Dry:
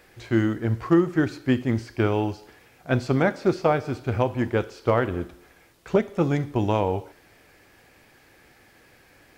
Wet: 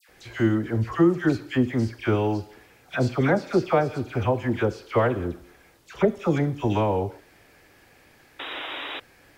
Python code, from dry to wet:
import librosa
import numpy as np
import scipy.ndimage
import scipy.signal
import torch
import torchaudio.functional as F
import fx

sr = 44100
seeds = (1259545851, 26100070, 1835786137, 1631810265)

y = fx.dispersion(x, sr, late='lows', ms=90.0, hz=1600.0)
y = fx.spec_paint(y, sr, seeds[0], shape='noise', start_s=8.39, length_s=0.61, low_hz=260.0, high_hz=3900.0, level_db=-34.0)